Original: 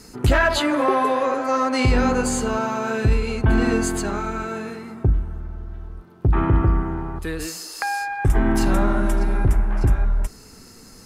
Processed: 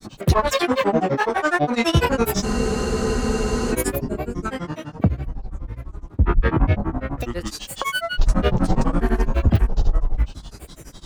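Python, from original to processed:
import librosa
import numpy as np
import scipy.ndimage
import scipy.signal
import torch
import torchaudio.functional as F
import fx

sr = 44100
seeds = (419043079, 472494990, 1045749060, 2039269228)

p1 = fx.spec_box(x, sr, start_s=3.97, length_s=0.4, low_hz=640.0, high_hz=6800.0, gain_db=-16)
p2 = 10.0 ** (-23.0 / 20.0) * np.tanh(p1 / 10.0 ** (-23.0 / 20.0))
p3 = p1 + (p2 * librosa.db_to_amplitude(-8.0))
p4 = fx.echo_feedback(p3, sr, ms=498, feedback_pct=54, wet_db=-22.5)
p5 = fx.granulator(p4, sr, seeds[0], grain_ms=100.0, per_s=12.0, spray_ms=100.0, spread_st=12)
p6 = fx.spec_freeze(p5, sr, seeds[1], at_s=2.47, hold_s=1.25)
y = p6 * librosa.db_to_amplitude(2.0)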